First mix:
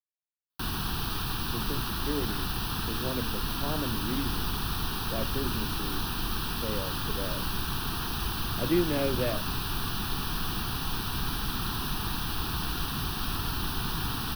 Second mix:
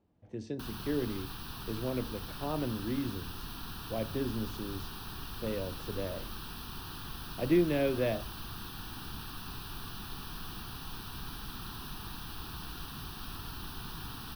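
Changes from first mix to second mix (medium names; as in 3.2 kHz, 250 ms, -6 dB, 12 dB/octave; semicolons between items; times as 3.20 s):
speech: entry -1.20 s; background -11.0 dB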